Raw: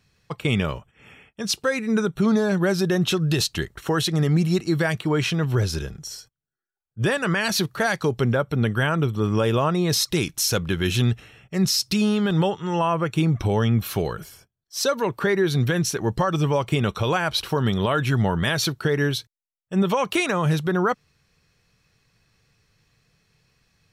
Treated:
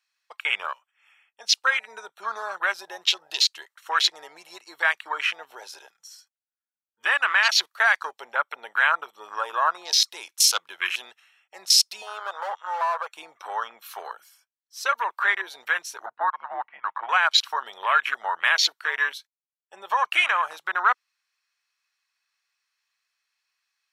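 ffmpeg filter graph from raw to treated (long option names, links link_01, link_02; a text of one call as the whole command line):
ffmpeg -i in.wav -filter_complex "[0:a]asettb=1/sr,asplit=3[link_01][link_02][link_03];[link_01]atrim=end=12.024[link_04];[link_02]atrim=start=12.02:end=13.15,asetpts=PTS-STARTPTS,afade=type=in:duration=0.004:curve=qsin,afade=type=out:start_time=1.126:duration=0.004:curve=qsin,lowshelf=frequency=370:width_type=q:width=3:gain=-12.5,volume=21.5dB,asoftclip=hard,volume=-21.5dB[link_05];[link_03]atrim=start=13.146[link_06];[link_04][link_05]acrossfade=duration=0.004:curve1=hsin:curve2=qsin[link_07];[link_07][link_06]acrossfade=duration=0.004:curve1=qsin:curve2=hsin,asettb=1/sr,asplit=3[link_08][link_09][link_10];[link_08]atrim=end=16.064[link_11];[link_09]atrim=start=16.06:end=17.09,asetpts=PTS-STARTPTS,afade=type=in:duration=0.004:curve=qsin,afade=type=out:start_time=1.026:duration=0.004:curve=qsin,lowpass=frequency=2100:width=0.5412,lowpass=frequency=2100:width=1.3066,afreqshift=-230[link_12];[link_10]atrim=start=17.086[link_13];[link_11][link_12]acrossfade=duration=0.004:curve1=hsin:curve2=qsin[link_14];[link_14][link_13]acrossfade=duration=0.004:curve1=qsin:curve2=hsin,afwtdn=0.0398,highpass=frequency=950:width=0.5412,highpass=frequency=950:width=1.3066,volume=6.5dB" out.wav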